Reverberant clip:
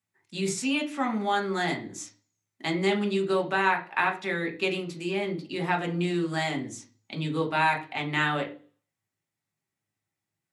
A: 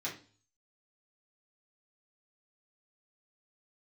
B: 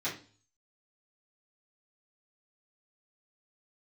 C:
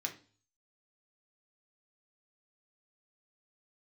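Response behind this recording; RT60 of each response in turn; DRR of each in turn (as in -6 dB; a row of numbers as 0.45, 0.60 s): C; 0.40, 0.40, 0.40 s; -6.5, -10.5, 1.5 dB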